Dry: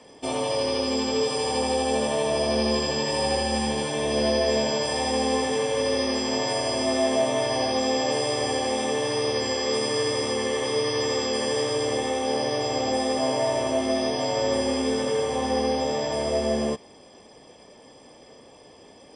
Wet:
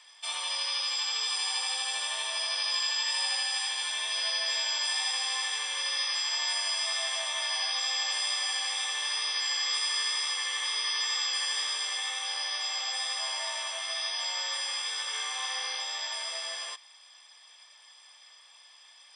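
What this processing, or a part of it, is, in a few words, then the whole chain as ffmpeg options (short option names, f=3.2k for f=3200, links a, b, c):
headphones lying on a table: -filter_complex "[0:a]highpass=f=1.2k:w=0.5412,highpass=f=1.2k:w=1.3066,equalizer=f=3.7k:t=o:w=0.22:g=10,asettb=1/sr,asplit=3[a][b][c];[a]atrim=end=15.094[d];[b]atrim=start=15.09:end=15.82,asetpts=PTS-STARTPTS,afade=t=in:d=0.004:c=qsin,afade=t=out:st=0.726:d=0.004:c=qsin,asplit=2[e][f];[f]adelay=39,volume=-4dB[g];[e][g]amix=inputs=2:normalize=0,atrim=end_sample=32193[h];[c]atrim=start=15.816[i];[d][h]acrossfade=d=0.004:c1=hsin:c2=qsin[j];[j][i]acrossfade=d=0.004:c1=qsin:c2=hsin"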